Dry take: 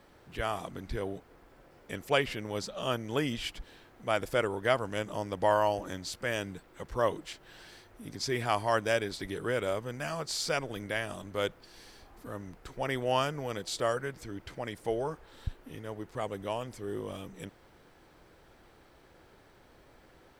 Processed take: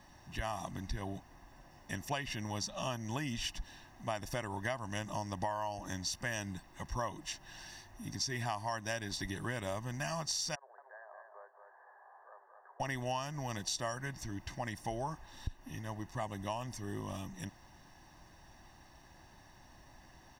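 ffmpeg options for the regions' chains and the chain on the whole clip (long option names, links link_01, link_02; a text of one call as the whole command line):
ffmpeg -i in.wav -filter_complex "[0:a]asettb=1/sr,asplit=3[link_01][link_02][link_03];[link_01]atrim=end=10.554[link_04];[link_02]atrim=start=10.55:end=12.8,asetpts=PTS-STARTPTS,afade=type=in:duration=0.004:curve=qsin,afade=type=out:start_time=2.246:duration=0.004:curve=qsin,acompressor=threshold=-46dB:ratio=5:attack=3.2:release=140:knee=1:detection=peak,asuperpass=centerf=830:order=20:qfactor=0.65,aecho=1:1:229|458|687|916:0.531|0.154|0.0446|0.0129,atrim=end_sample=99225[link_05];[link_03]atrim=start=12.796[link_06];[link_04][link_05]acrossfade=duration=0.004:curve1=hsin:curve2=qsin[link_07];[link_07][link_06]acrossfade=duration=0.004:curve1=qsin:curve2=hsin,equalizer=frequency=5800:width=6.7:gain=14.5,aecho=1:1:1.1:0.84,acompressor=threshold=-31dB:ratio=10,volume=-2dB" out.wav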